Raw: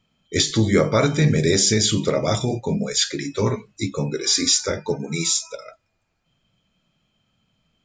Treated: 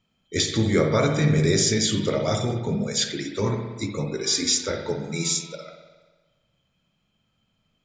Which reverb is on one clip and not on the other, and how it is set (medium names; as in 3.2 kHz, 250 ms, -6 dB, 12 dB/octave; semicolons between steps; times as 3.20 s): spring tank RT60 1.3 s, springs 59 ms, chirp 35 ms, DRR 5 dB; trim -4 dB